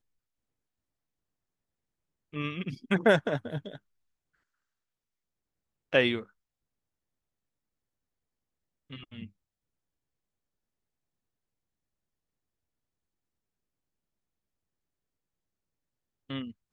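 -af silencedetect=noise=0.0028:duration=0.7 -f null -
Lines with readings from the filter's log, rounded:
silence_start: 0.00
silence_end: 2.33 | silence_duration: 2.33
silence_start: 3.78
silence_end: 5.93 | silence_duration: 2.14
silence_start: 6.26
silence_end: 8.90 | silence_duration: 2.64
silence_start: 9.28
silence_end: 16.29 | silence_duration: 7.01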